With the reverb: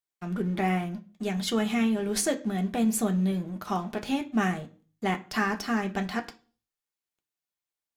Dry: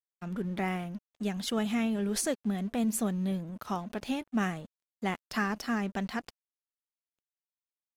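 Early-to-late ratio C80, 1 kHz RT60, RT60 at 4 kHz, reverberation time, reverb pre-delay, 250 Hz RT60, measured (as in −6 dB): 22.0 dB, 0.35 s, 0.40 s, 0.40 s, 3 ms, 0.45 s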